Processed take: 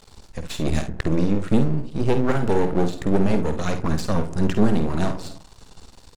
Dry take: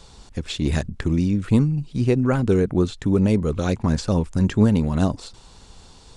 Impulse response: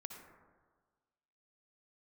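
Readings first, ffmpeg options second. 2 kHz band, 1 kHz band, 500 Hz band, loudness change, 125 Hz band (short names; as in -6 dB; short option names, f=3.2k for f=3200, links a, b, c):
+1.0 dB, +3.5 dB, 0.0 dB, -2.0 dB, -4.0 dB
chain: -filter_complex "[0:a]bandreject=f=3.3k:w=14,asplit=2[a][b];[b]highshelf=f=2.4k:g=-10.5[c];[1:a]atrim=start_sample=2205,afade=t=out:st=0.38:d=0.01,atrim=end_sample=17199[d];[c][d]afir=irnorm=-1:irlink=0,volume=-4.5dB[e];[a][e]amix=inputs=2:normalize=0,aeval=exprs='max(val(0),0)':c=same,aecho=1:1:51|69:0.355|0.168,volume=1dB"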